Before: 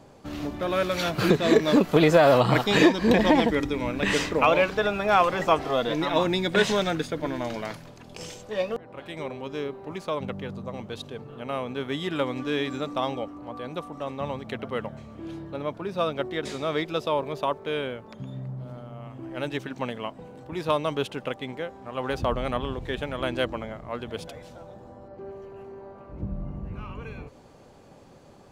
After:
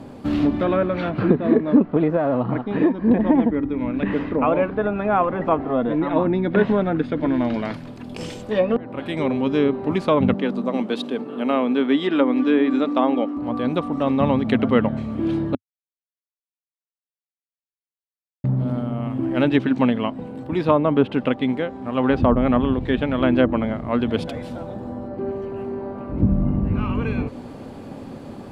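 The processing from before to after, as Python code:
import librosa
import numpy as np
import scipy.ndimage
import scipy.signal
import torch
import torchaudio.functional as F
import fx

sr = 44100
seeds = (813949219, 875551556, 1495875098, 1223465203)

y = fx.highpass(x, sr, hz=230.0, slope=24, at=(10.34, 13.37))
y = fx.edit(y, sr, fx.silence(start_s=15.55, length_s=2.89), tone=tone)
y = fx.env_lowpass_down(y, sr, base_hz=1400.0, full_db=-21.5)
y = fx.graphic_eq_15(y, sr, hz=(100, 250, 6300), db=(4, 11, -9))
y = fx.rider(y, sr, range_db=10, speed_s=2.0)
y = y * librosa.db_to_amplitude(1.5)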